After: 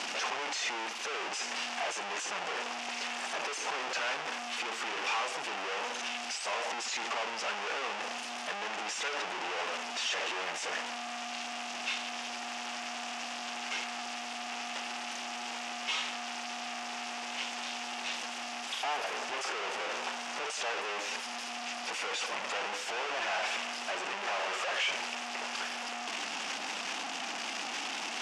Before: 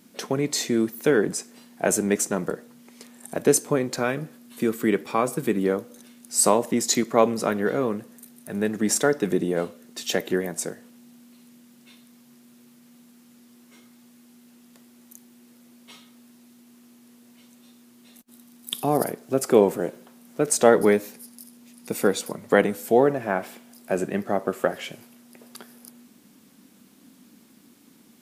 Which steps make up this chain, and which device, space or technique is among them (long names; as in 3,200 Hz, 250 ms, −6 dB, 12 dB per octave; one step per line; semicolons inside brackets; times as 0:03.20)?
home computer beeper (sign of each sample alone; loudspeaker in its box 790–5,900 Hz, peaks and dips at 800 Hz +5 dB, 2,700 Hz +6 dB, 4,100 Hz −6 dB)
level −4 dB